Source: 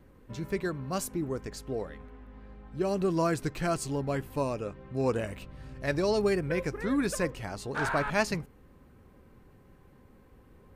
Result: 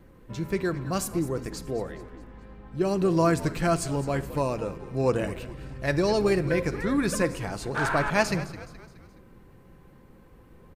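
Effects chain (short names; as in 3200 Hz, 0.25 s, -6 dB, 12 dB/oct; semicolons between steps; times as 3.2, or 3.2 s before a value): frequency-shifting echo 0.211 s, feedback 47%, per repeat -75 Hz, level -15 dB; shoebox room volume 3500 m³, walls furnished, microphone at 0.78 m; gain +3.5 dB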